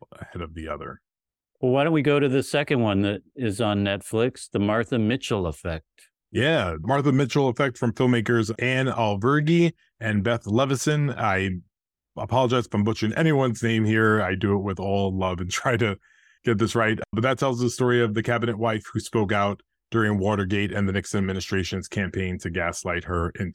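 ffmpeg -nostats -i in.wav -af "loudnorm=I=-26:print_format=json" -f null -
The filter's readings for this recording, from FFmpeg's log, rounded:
"input_i" : "-24.1",
"input_tp" : "-7.0",
"input_lra" : "4.5",
"input_thresh" : "-34.4",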